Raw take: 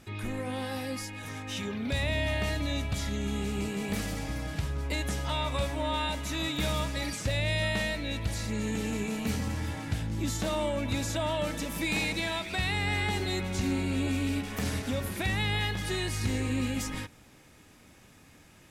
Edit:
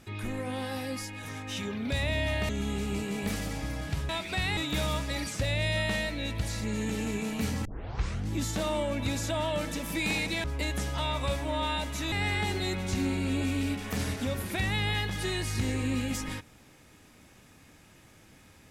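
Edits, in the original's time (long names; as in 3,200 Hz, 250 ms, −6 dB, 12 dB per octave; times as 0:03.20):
0:02.49–0:03.15: remove
0:04.75–0:06.43: swap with 0:12.30–0:12.78
0:09.51: tape start 0.64 s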